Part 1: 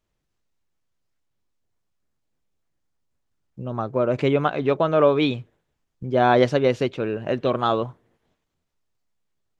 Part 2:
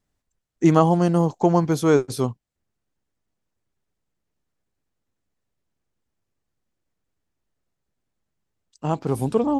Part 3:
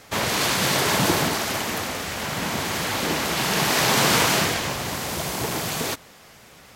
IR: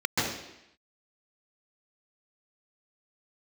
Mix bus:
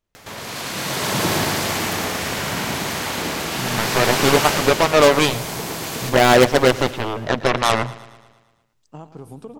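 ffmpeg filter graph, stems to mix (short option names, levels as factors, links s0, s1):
-filter_complex "[0:a]aeval=exprs='0.355*(cos(1*acos(clip(val(0)/0.355,-1,1)))-cos(1*PI/2))+0.112*(cos(7*acos(clip(val(0)/0.355,-1,1)))-cos(7*PI/2))':c=same,volume=0.668,asplit=2[s0][s1];[s1]volume=0.119[s2];[1:a]acompressor=threshold=0.0562:ratio=10,adelay=100,volume=0.119,asplit=2[s3][s4];[s4]volume=0.2[s5];[2:a]acompressor=mode=upward:threshold=0.0708:ratio=2.5,adelay=150,volume=0.299,asplit=2[s6][s7];[s7]volume=0.631[s8];[s2][s5][s8]amix=inputs=3:normalize=0,aecho=0:1:113|226|339|452|565|678|791|904:1|0.56|0.314|0.176|0.0983|0.0551|0.0308|0.0173[s9];[s0][s3][s6][s9]amix=inputs=4:normalize=0,dynaudnorm=f=200:g=11:m=3.98"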